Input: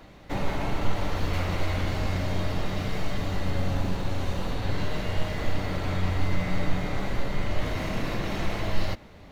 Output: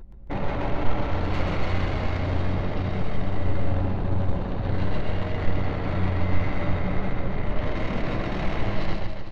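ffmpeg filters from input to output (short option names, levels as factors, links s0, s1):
-af "anlmdn=15.8,acompressor=mode=upward:threshold=0.0355:ratio=2.5,aecho=1:1:130|279.5|451.4|649.1|876.5:0.631|0.398|0.251|0.158|0.1,volume=1.12"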